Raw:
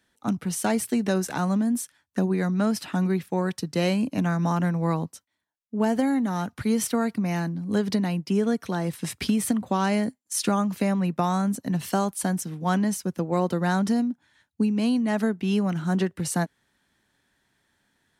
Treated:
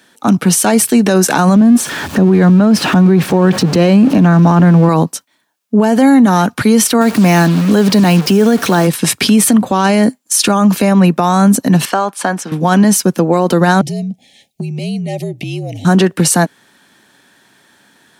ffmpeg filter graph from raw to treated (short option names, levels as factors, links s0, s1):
-filter_complex "[0:a]asettb=1/sr,asplit=3[s0][s1][s2];[s0]atrim=end=1.564[s3];[s1]atrim=start=1.56:end=4.89,asetpts=PTS-STARTPTS,afade=t=in:d=0.004:c=qsin,afade=t=out:st=3.326:d=0.004:c=qsin,aeval=exprs='val(0)+0.5*0.0188*sgn(val(0))':c=same,lowpass=f=3000:p=1,lowshelf=f=430:g=7[s4];[s2]atrim=start=4.886[s5];[s3][s4]acrossfade=d=0.004:c1=hsin:c2=qsin[s6];[s6][s5]acrossfade=d=0.004:c1=qsin:c2=hsin,asettb=1/sr,asplit=3[s7][s8][s9];[s7]atrim=end=7.014[s10];[s8]atrim=start=7.01:end=8.87,asetpts=PTS-STARTPTS,afade=t=in:d=0.004:c=qsin,afade=t=out:st=1.856:d=0.004:c=qsin,aeval=exprs='val(0)+0.5*0.0119*sgn(val(0))':c=same,highpass=59,acrusher=bits=6:mix=0:aa=0.5[s11];[s9]atrim=start=8.866[s12];[s10][s11]acrossfade=d=0.004:c1=hsin:c2=qsin[s13];[s13][s12]acrossfade=d=0.004:c1=qsin:c2=hsin,asettb=1/sr,asplit=3[s14][s15][s16];[s14]atrim=end=11.854[s17];[s15]atrim=start=11.85:end=12.52,asetpts=PTS-STARTPTS,afade=t=in:d=0.004:c=qsin,afade=t=out:st=0.666:d=0.004:c=qsin,bandpass=f=1200:t=q:w=0.66,acompressor=threshold=0.0355:ratio=6:attack=3.2:release=140:knee=1:detection=peak[s18];[s16]atrim=start=12.516[s19];[s17][s18]acrossfade=d=0.004:c1=hsin:c2=qsin[s20];[s20][s19]acrossfade=d=0.004:c1=qsin:c2=hsin,asettb=1/sr,asplit=3[s21][s22][s23];[s21]atrim=end=13.814[s24];[s22]atrim=start=13.81:end=15.85,asetpts=PTS-STARTPTS,afade=t=in:d=0.004:c=qsin,afade=t=out:st=2.036:d=0.004:c=qsin,asuperstop=centerf=1300:order=12:qfactor=1.1,acompressor=threshold=0.0112:ratio=4:attack=3.2:release=140:knee=1:detection=peak,afreqshift=-55[s25];[s23]atrim=start=15.846[s26];[s24][s25]acrossfade=d=0.004:c1=hsin:c2=qsin[s27];[s27][s26]acrossfade=d=0.004:c1=qsin:c2=hsin,highpass=180,bandreject=f=2000:w=14,alimiter=level_in=12.6:limit=0.891:release=50:level=0:latency=1,volume=0.891"